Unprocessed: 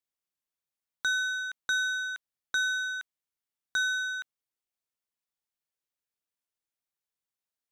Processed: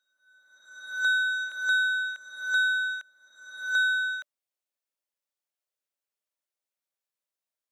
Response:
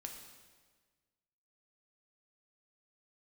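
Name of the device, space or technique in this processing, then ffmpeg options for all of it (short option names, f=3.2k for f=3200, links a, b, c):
ghost voice: -filter_complex "[0:a]areverse[a];[1:a]atrim=start_sample=2205[b];[a][b]afir=irnorm=-1:irlink=0,areverse,highpass=310,equalizer=f=590:w=7.6:g=9.5,volume=2.5dB"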